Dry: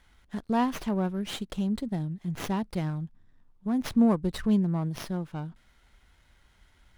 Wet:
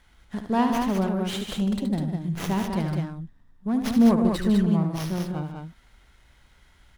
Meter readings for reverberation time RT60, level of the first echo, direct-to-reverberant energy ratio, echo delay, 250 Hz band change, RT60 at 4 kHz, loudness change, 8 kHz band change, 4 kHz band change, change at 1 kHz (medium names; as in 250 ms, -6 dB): no reverb, -7.5 dB, no reverb, 73 ms, +4.5 dB, no reverb, +4.5 dB, +4.5 dB, +4.5 dB, +4.5 dB